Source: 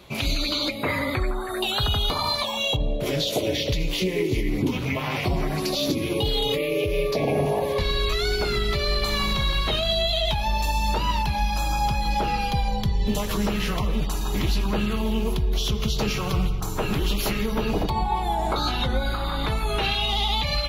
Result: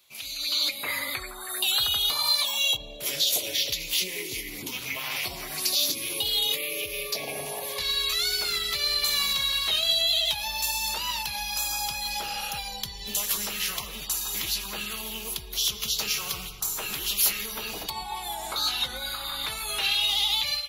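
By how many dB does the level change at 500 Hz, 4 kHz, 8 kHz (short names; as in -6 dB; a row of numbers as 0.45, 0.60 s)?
-14.0, +2.5, +8.5 dB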